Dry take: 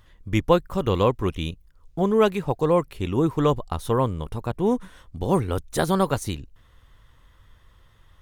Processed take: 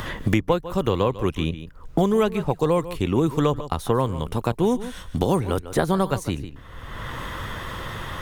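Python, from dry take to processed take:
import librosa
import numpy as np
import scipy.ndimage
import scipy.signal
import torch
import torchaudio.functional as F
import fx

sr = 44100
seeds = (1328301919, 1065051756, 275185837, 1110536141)

y = x + 10.0 ** (-16.5 / 20.0) * np.pad(x, (int(147 * sr / 1000.0), 0))[:len(x)]
y = fx.band_squash(y, sr, depth_pct=100)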